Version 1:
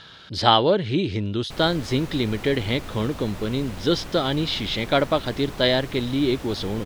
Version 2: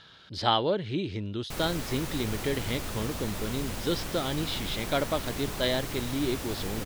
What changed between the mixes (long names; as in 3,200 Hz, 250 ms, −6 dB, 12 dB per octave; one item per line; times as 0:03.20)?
speech −8.0 dB
background: add high-shelf EQ 5,300 Hz +10 dB